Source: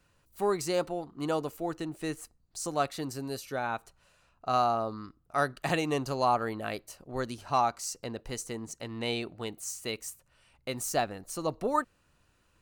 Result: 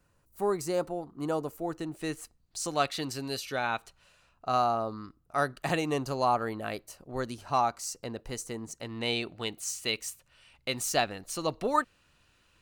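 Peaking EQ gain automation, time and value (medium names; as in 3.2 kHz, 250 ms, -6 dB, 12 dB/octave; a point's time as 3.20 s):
peaking EQ 3.2 kHz 1.8 oct
1.57 s -7 dB
2.02 s +1.5 dB
3.06 s +9.5 dB
3.74 s +9.5 dB
4.60 s -1 dB
8.72 s -1 dB
9.42 s +8 dB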